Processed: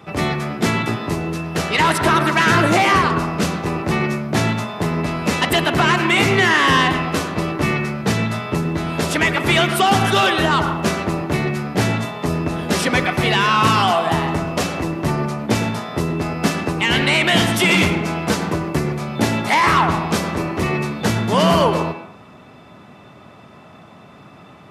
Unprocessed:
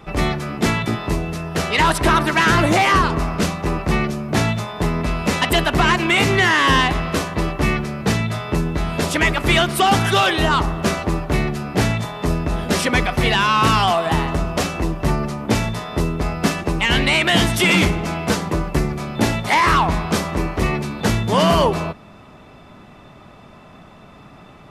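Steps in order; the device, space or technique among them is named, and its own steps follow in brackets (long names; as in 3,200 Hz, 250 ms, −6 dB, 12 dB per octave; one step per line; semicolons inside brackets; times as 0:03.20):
filtered reverb send (on a send: high-pass filter 190 Hz 24 dB per octave + low-pass filter 3,200 Hz 12 dB per octave + convolution reverb RT60 0.50 s, pre-delay 95 ms, DRR 7 dB)
on the sum: high-pass filter 82 Hz 24 dB per octave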